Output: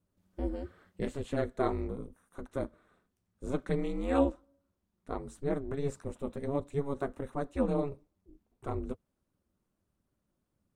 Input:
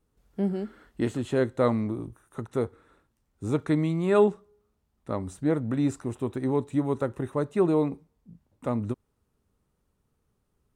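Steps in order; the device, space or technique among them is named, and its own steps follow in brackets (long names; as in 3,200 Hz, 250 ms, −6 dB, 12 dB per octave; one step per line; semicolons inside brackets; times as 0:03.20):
alien voice (ring modulation 140 Hz; flanger 1.5 Hz, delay 0.5 ms, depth 5.4 ms, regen −52%)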